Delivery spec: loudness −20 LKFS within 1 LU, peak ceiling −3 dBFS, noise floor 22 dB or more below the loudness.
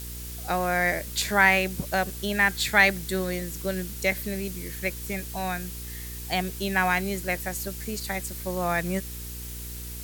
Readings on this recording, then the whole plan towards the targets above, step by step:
mains hum 60 Hz; hum harmonics up to 480 Hz; level of the hum −37 dBFS; background noise floor −37 dBFS; target noise floor −49 dBFS; integrated loudness −26.5 LKFS; sample peak −6.0 dBFS; target loudness −20.0 LKFS
→ hum removal 60 Hz, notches 8
noise reduction from a noise print 12 dB
level +6.5 dB
brickwall limiter −3 dBFS

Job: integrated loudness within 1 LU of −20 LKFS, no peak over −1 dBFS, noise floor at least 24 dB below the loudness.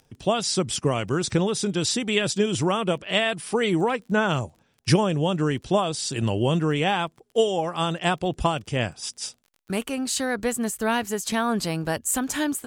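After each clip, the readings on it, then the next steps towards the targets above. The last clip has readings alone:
crackle rate 21 per second; integrated loudness −24.5 LKFS; sample peak −7.0 dBFS; target loudness −20.0 LKFS
→ click removal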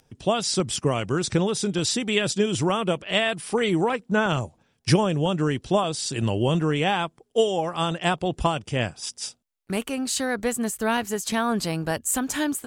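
crackle rate 0.079 per second; integrated loudness −24.5 LKFS; sample peak −7.5 dBFS; target loudness −20.0 LKFS
→ level +4.5 dB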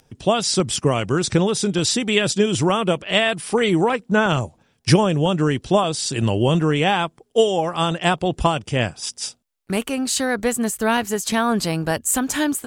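integrated loudness −20.0 LKFS; sample peak −3.0 dBFS; background noise floor −62 dBFS

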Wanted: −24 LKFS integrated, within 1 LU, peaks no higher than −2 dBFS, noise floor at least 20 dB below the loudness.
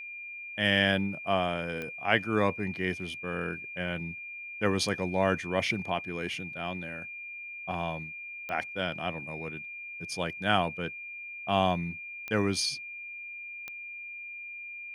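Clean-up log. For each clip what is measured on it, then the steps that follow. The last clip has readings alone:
number of clicks 4; interfering tone 2,400 Hz; level of the tone −39 dBFS; integrated loudness −31.5 LKFS; sample peak −8.0 dBFS; target loudness −24.0 LKFS
→ click removal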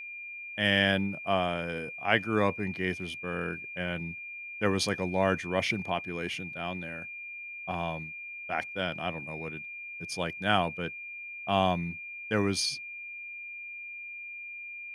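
number of clicks 0; interfering tone 2,400 Hz; level of the tone −39 dBFS
→ notch filter 2,400 Hz, Q 30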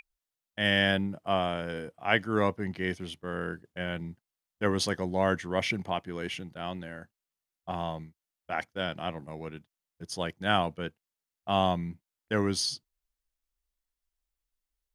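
interfering tone none found; integrated loudness −31.0 LKFS; sample peak −8.0 dBFS; target loudness −24.0 LKFS
→ level +7 dB
brickwall limiter −2 dBFS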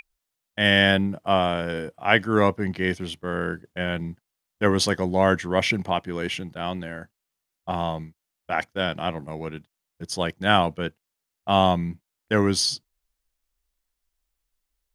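integrated loudness −24.0 LKFS; sample peak −2.0 dBFS; background noise floor −83 dBFS

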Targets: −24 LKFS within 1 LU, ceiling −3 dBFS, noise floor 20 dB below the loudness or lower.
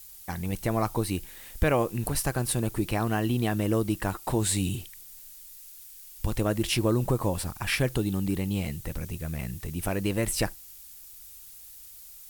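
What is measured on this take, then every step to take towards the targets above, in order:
background noise floor −47 dBFS; target noise floor −49 dBFS; integrated loudness −28.5 LKFS; sample peak −9.0 dBFS; target loudness −24.0 LKFS
→ noise reduction from a noise print 6 dB
level +4.5 dB

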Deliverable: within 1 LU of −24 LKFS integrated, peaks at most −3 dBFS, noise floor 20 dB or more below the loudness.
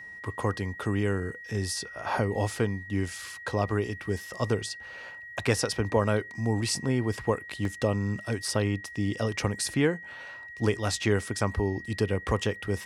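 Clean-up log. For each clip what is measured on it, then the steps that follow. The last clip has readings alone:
number of dropouts 2; longest dropout 2.4 ms; interfering tone 1,900 Hz; level of the tone −41 dBFS; integrated loudness −29.5 LKFS; sample peak −9.5 dBFS; target loudness −24.0 LKFS
→ repair the gap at 0:07.65/0:11.03, 2.4 ms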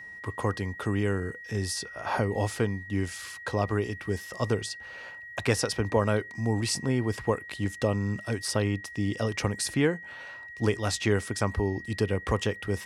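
number of dropouts 0; interfering tone 1,900 Hz; level of the tone −41 dBFS
→ notch filter 1,900 Hz, Q 30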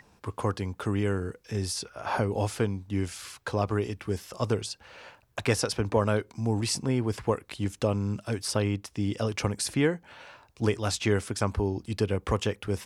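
interfering tone none found; integrated loudness −29.5 LKFS; sample peak −9.5 dBFS; target loudness −24.0 LKFS
→ level +5.5 dB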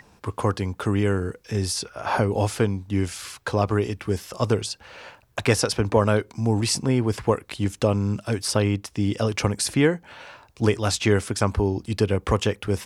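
integrated loudness −24.0 LKFS; sample peak −4.0 dBFS; background noise floor −57 dBFS

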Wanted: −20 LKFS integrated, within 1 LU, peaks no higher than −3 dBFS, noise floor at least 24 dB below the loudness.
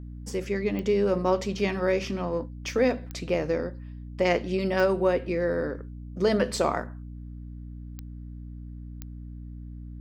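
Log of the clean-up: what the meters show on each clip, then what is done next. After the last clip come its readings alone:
number of clicks 5; mains hum 60 Hz; hum harmonics up to 300 Hz; level of the hum −37 dBFS; integrated loudness −27.0 LKFS; sample peak −11.0 dBFS; target loudness −20.0 LKFS
→ click removal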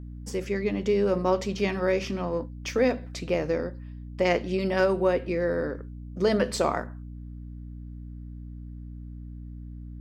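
number of clicks 0; mains hum 60 Hz; hum harmonics up to 300 Hz; level of the hum −37 dBFS
→ hum removal 60 Hz, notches 5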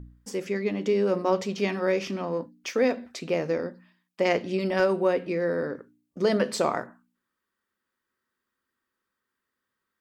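mains hum none found; integrated loudness −27.0 LKFS; sample peak −11.0 dBFS; target loudness −20.0 LKFS
→ level +7 dB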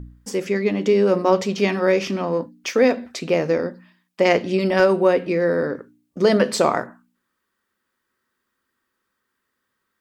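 integrated loudness −20.0 LKFS; sample peak −4.0 dBFS; background noise floor −77 dBFS

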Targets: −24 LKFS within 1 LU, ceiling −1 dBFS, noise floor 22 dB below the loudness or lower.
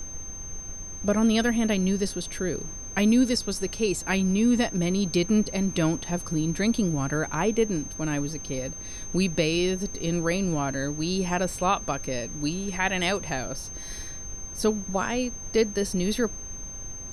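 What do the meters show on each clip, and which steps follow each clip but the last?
interfering tone 6,300 Hz; level of the tone −37 dBFS; background noise floor −38 dBFS; target noise floor −49 dBFS; integrated loudness −26.5 LKFS; sample peak −10.0 dBFS; target loudness −24.0 LKFS
→ notch filter 6,300 Hz, Q 30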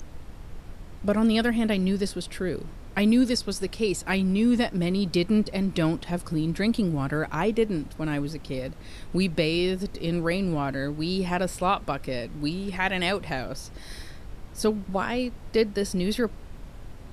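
interfering tone none found; background noise floor −42 dBFS; target noise floor −49 dBFS
→ noise reduction from a noise print 7 dB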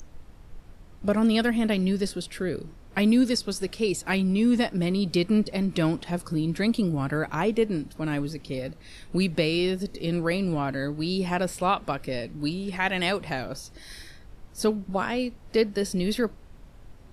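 background noise floor −49 dBFS; integrated loudness −26.5 LKFS; sample peak −10.5 dBFS; target loudness −24.0 LKFS
→ level +2.5 dB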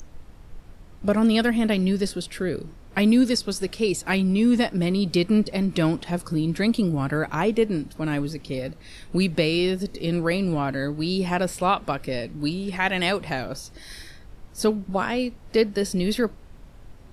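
integrated loudness −24.0 LKFS; sample peak −8.0 dBFS; background noise floor −46 dBFS

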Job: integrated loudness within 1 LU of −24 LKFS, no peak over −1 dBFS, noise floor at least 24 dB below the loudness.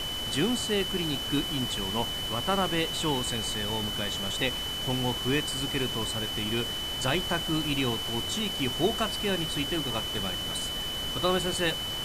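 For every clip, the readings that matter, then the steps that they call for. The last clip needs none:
interfering tone 3,000 Hz; level of the tone −32 dBFS; background noise floor −33 dBFS; target noise floor −53 dBFS; integrated loudness −28.5 LKFS; sample peak −12.0 dBFS; target loudness −24.0 LKFS
→ notch filter 3,000 Hz, Q 30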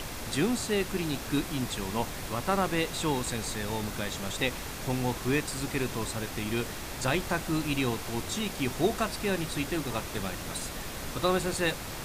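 interfering tone none found; background noise floor −39 dBFS; target noise floor −55 dBFS
→ noise reduction from a noise print 16 dB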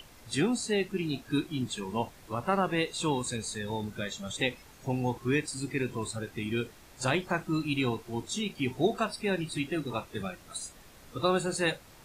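background noise floor −54 dBFS; target noise floor −56 dBFS
→ noise reduction from a noise print 6 dB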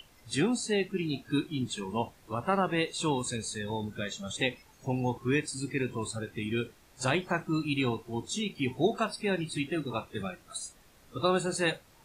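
background noise floor −60 dBFS; integrated loudness −32.0 LKFS; sample peak −13.0 dBFS; target loudness −24.0 LKFS
→ level +8 dB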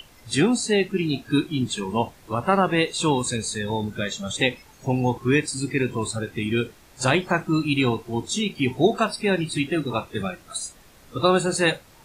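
integrated loudness −24.0 LKFS; sample peak −5.0 dBFS; background noise floor −52 dBFS

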